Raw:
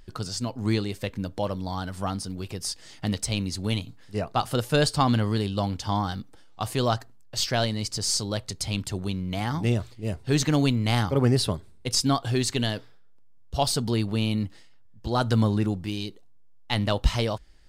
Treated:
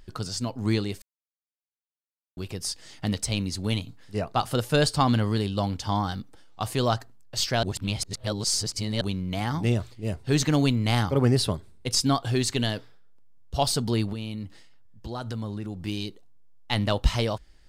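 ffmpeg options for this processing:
-filter_complex "[0:a]asettb=1/sr,asplit=3[a][b][c];[a]atrim=end=14.134[d];[b]atrim=start=14.13:end=15.84,asetpts=PTS-STARTPTS,afade=t=in:d=0.004:c=qsin,afade=t=out:st=1.706:d=0.004:c=qsin,acompressor=threshold=-33dB:ratio=3:attack=3.2:release=140:knee=1:detection=peak[e];[c]atrim=start=15.836[f];[d][e]acrossfade=d=0.004:c1=hsin:c2=qsin[g];[g][f]acrossfade=d=0.004:c1=qsin:c2=hsin,asplit=5[h][i][j][k][l];[h]atrim=end=1.02,asetpts=PTS-STARTPTS,afade=t=out:st=1.016:d=0.004:c=hsin[m];[i]atrim=start=1.02:end=2.37,asetpts=PTS-STARTPTS,volume=0[n];[j]atrim=start=2.37:end=7.632,asetpts=PTS-STARTPTS,afade=t=in:d=0.004:c=hsin[o];[k]atrim=start=7.628:end=9.012,asetpts=PTS-STARTPTS,areverse[p];[l]atrim=start=9.008[q];[m][n][o]concat=n=3:v=0:a=1[r];[r][p]acrossfade=d=0.004:c1=hsin:c2=hsin[s];[s][q]acrossfade=d=0.004:c1=hsin:c2=hsin"

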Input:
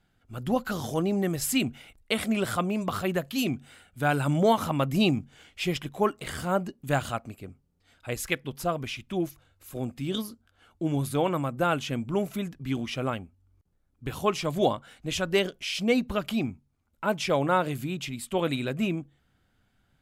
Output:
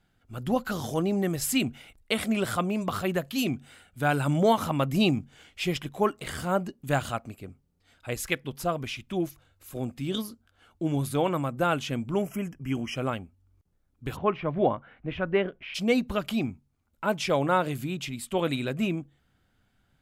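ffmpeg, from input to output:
-filter_complex "[0:a]asettb=1/sr,asplit=3[a][b][c];[a]atrim=end=12.224[d];[b]atrim=start=12.22:end=12.96,asetpts=PTS-STARTPTS,afade=t=in:d=0.004:c=qsin,afade=t=out:st=0.736:d=0.004:c=qsin,asuperstop=centerf=4000:order=20:qfactor=2.4[e];[c]atrim=start=12.956[f];[d][e]acrossfade=d=0.004:c1=hsin:c2=qsin[g];[g][f]acrossfade=d=0.004:c1=qsin:c2=hsin,asplit=3[h][i][j];[h]afade=t=out:st=14.15:d=0.02[k];[i]lowpass=f=2.3k:w=0.5412,lowpass=f=2.3k:w=1.3066,afade=t=in:st=14.15:d=0.02,afade=t=out:st=15.74:d=0.02[l];[j]afade=t=in:st=15.74:d=0.02[m];[k][l][m]amix=inputs=3:normalize=0"

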